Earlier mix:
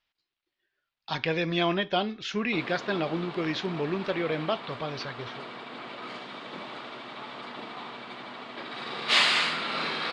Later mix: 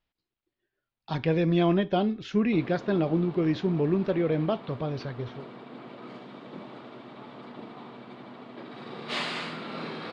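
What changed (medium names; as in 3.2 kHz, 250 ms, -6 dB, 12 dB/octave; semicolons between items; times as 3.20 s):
background -4.0 dB; master: add tilt shelf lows +8.5 dB, about 700 Hz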